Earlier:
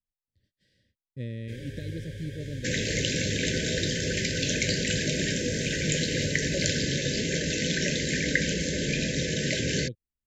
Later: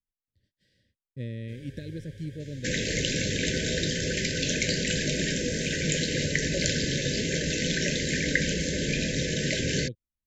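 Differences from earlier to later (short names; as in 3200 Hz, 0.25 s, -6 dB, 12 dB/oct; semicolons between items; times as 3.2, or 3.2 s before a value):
first sound -7.5 dB; second sound: remove HPF 50 Hz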